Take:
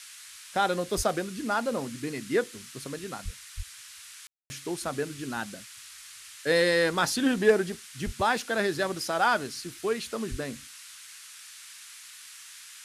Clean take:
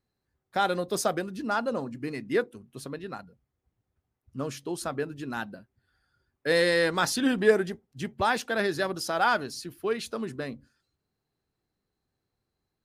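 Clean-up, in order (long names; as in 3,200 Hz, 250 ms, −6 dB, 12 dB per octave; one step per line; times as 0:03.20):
clipped peaks rebuilt −11 dBFS
high-pass at the plosives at 0:00.96/0:03.24/0:03.56/0:08.05/0:10.30
ambience match 0:04.27–0:04.50
noise reduction from a noise print 30 dB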